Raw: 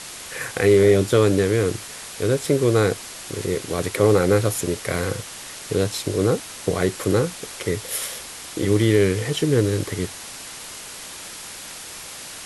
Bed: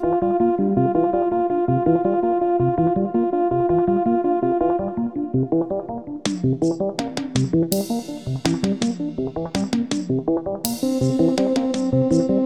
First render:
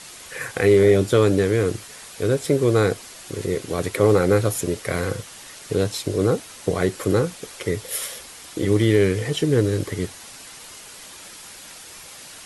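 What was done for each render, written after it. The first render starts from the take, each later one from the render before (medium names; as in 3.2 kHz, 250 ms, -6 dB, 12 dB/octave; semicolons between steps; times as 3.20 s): noise reduction 6 dB, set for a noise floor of -37 dBFS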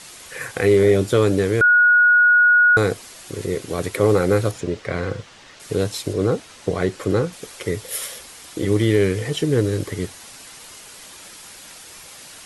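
1.61–2.77 s: bleep 1.45 kHz -10 dBFS; 4.51–5.60 s: distance through air 120 m; 6.13–7.33 s: distance through air 50 m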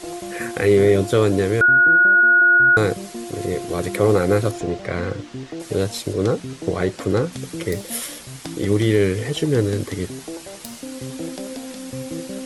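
add bed -12.5 dB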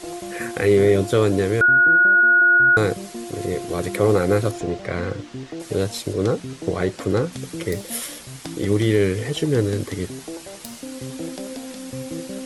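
trim -1 dB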